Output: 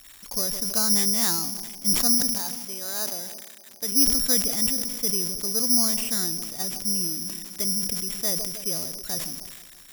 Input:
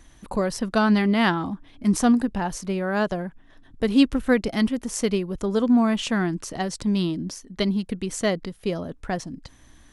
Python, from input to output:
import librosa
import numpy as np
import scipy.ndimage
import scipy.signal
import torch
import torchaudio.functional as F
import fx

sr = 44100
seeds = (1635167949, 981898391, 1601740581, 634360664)

y = x + 0.5 * 10.0 ** (-18.5 / 20.0) * np.diff(np.sign(x), prepend=np.sign(x[:1]))
y = fx.highpass(y, sr, hz=490.0, slope=6, at=(2.32, 3.92))
y = fx.echo_bbd(y, sr, ms=158, stages=1024, feedback_pct=70, wet_db=-18.5)
y = (np.kron(scipy.signal.resample_poly(y, 1, 8), np.eye(8)[0]) * 8)[:len(y)]
y = fx.sustainer(y, sr, db_per_s=38.0)
y = y * librosa.db_to_amplitude(-12.5)